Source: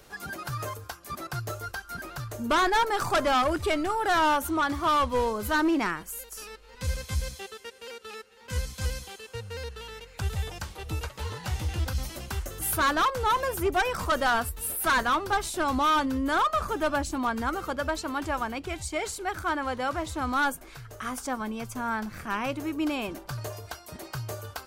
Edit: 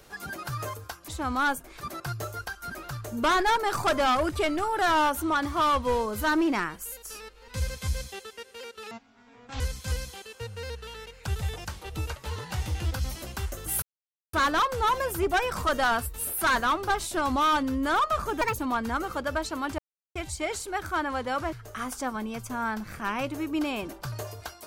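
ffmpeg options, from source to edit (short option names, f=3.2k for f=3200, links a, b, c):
-filter_complex "[0:a]asplit=11[a][b][c][d][e][f][g][h][i][j][k];[a]atrim=end=1.082[l];[b]atrim=start=20.048:end=20.782[m];[c]atrim=start=1.078:end=8.184[n];[d]atrim=start=8.18:end=8.54,asetpts=PTS-STARTPTS,asetrate=22932,aresample=44100[o];[e]atrim=start=8.536:end=12.76,asetpts=PTS-STARTPTS,afade=t=out:st=4.22:d=0.004:c=hsin,apad=pad_dur=0.51[p];[f]atrim=start=12.76:end=16.844,asetpts=PTS-STARTPTS,afade=t=in:d=0.004:c=hsin[q];[g]atrim=start=16.84:end=17.11,asetpts=PTS-STARTPTS,asetrate=69237,aresample=44100,atrim=end_sample=7584,asetpts=PTS-STARTPTS[r];[h]atrim=start=17.106:end=18.31,asetpts=PTS-STARTPTS,afade=t=out:st=1.2:d=0.004:c=hsin[s];[i]atrim=start=18.31:end=18.68,asetpts=PTS-STARTPTS,volume=0[t];[j]atrim=start=18.68:end=20.052,asetpts=PTS-STARTPTS,afade=t=in:d=0.004:c=hsin[u];[k]atrim=start=20.778[v];[l][m]acrossfade=d=0.004:c1=hsin:c2=hsin[w];[w][n]acrossfade=d=0.004:c1=hsin:c2=hsin[x];[x][o]acrossfade=d=0.004:c1=hsin:c2=hsin[y];[p][q]concat=n=2:v=0:a=1[z];[y][z]acrossfade=d=0.004:c1=hsin:c2=hsin[aa];[aa][r]acrossfade=d=0.004:c1=hsin:c2=hsin[ab];[s][t][u]concat=n=3:v=0:a=1[ac];[ab][ac]acrossfade=d=0.004:c1=hsin:c2=hsin[ad];[ad][v]acrossfade=d=0.004:c1=hsin:c2=hsin"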